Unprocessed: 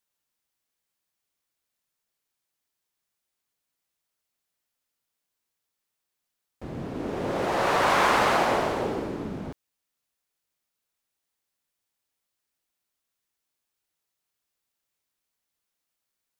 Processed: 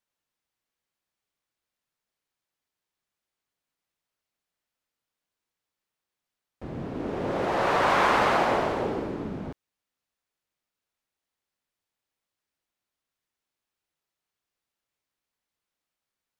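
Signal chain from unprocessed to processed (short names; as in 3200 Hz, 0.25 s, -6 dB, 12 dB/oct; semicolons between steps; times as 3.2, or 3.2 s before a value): high shelf 5700 Hz -10 dB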